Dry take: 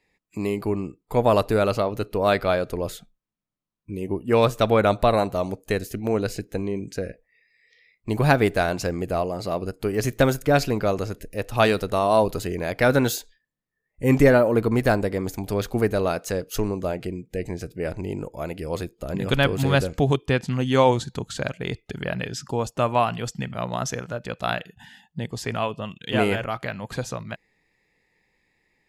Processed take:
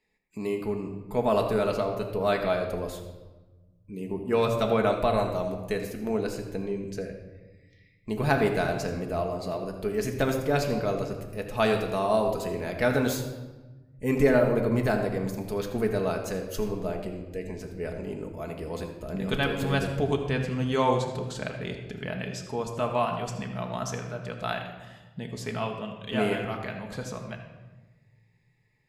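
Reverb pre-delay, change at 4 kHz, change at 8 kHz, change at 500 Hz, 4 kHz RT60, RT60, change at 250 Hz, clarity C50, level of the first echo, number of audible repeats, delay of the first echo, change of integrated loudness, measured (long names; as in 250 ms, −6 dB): 5 ms, −5.5 dB, −6.0 dB, −4.5 dB, 0.85 s, 1.2 s, −4.5 dB, 6.0 dB, no echo audible, no echo audible, no echo audible, −5.0 dB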